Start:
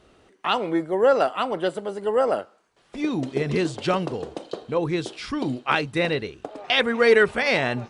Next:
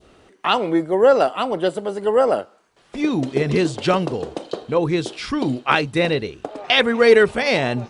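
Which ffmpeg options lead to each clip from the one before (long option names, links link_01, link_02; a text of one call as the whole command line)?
ffmpeg -i in.wav -af "adynamicequalizer=threshold=0.0158:dfrequency=1600:dqfactor=0.86:tfrequency=1600:tqfactor=0.86:attack=5:release=100:ratio=0.375:range=3.5:mode=cutabove:tftype=bell,volume=5dB" out.wav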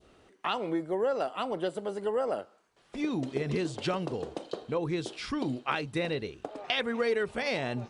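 ffmpeg -i in.wav -af "acompressor=threshold=-19dB:ratio=3,volume=-8.5dB" out.wav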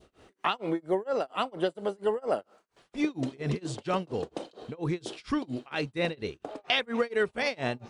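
ffmpeg -i in.wav -af "tremolo=f=4.3:d=0.98,volume=5dB" out.wav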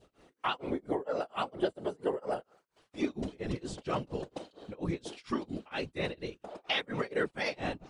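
ffmpeg -i in.wav -af "afftfilt=real='hypot(re,im)*cos(2*PI*random(0))':imag='hypot(re,im)*sin(2*PI*random(1))':win_size=512:overlap=0.75,volume=1.5dB" out.wav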